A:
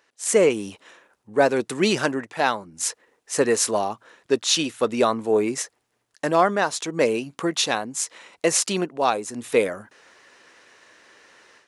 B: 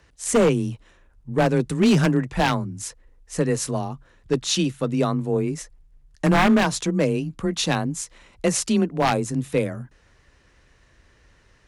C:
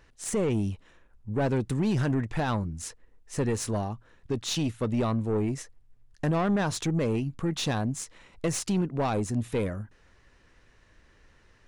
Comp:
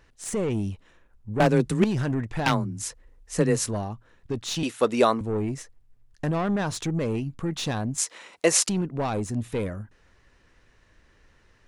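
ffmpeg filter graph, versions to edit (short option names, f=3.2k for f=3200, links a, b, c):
-filter_complex "[1:a]asplit=2[a][b];[0:a]asplit=2[c][d];[2:a]asplit=5[e][f][g][h][i];[e]atrim=end=1.402[j];[a]atrim=start=1.398:end=1.842[k];[f]atrim=start=1.838:end=2.462[l];[b]atrim=start=2.458:end=3.662[m];[g]atrim=start=3.658:end=4.632[n];[c]atrim=start=4.628:end=5.212[o];[h]atrim=start=5.208:end=7.982[p];[d]atrim=start=7.978:end=8.692[q];[i]atrim=start=8.688[r];[j][k]acrossfade=d=0.004:c1=hsin:c2=hsin[s];[s][l]acrossfade=d=0.004:c1=hsin:c2=hsin[t];[t][m]acrossfade=d=0.004:c1=hsin:c2=hsin[u];[u][n]acrossfade=d=0.004:c1=hsin:c2=hsin[v];[v][o]acrossfade=d=0.004:c1=hsin:c2=hsin[w];[w][p]acrossfade=d=0.004:c1=hsin:c2=hsin[x];[x][q]acrossfade=d=0.004:c1=hsin:c2=hsin[y];[y][r]acrossfade=d=0.004:c1=hsin:c2=hsin"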